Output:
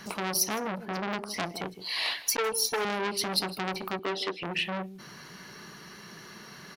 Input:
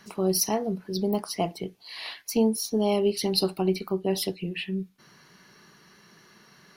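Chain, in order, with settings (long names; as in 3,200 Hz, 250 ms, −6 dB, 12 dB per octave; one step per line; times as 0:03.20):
0:00.85–0:01.34: high-shelf EQ 2,300 Hz −11 dB
0:02.26–0:02.85: comb filter 2.2 ms, depth 88%
0:03.99–0:04.43: Chebyshev band-pass filter 330–3,300 Hz, order 2
downward compressor 2.5 to 1, threshold −34 dBFS, peak gain reduction 11.5 dB
single-tap delay 158 ms −18 dB
saturating transformer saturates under 3,100 Hz
level +8.5 dB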